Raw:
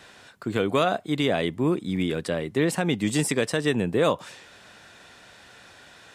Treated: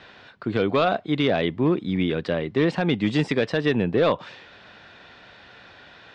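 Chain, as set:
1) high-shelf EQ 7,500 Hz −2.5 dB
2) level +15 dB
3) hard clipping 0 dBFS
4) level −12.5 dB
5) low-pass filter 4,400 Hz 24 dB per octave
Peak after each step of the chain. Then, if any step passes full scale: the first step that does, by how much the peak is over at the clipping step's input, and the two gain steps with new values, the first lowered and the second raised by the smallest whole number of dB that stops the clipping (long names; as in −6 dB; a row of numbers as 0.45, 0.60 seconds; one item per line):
−8.5, +6.5, 0.0, −12.5, −11.5 dBFS
step 2, 6.5 dB
step 2 +8 dB, step 4 −5.5 dB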